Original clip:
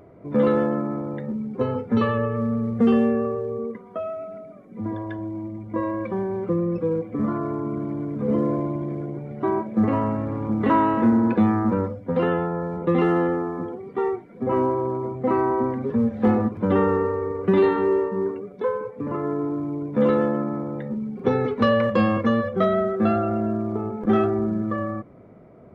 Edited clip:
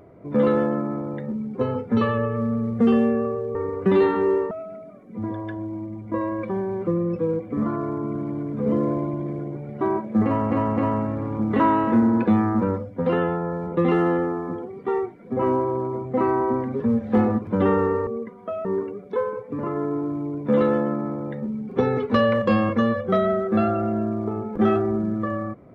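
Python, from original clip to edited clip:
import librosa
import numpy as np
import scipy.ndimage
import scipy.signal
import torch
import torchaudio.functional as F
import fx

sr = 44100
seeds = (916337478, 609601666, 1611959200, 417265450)

y = fx.edit(x, sr, fx.swap(start_s=3.55, length_s=0.58, other_s=17.17, other_length_s=0.96),
    fx.repeat(start_s=9.87, length_s=0.26, count=3), tone=tone)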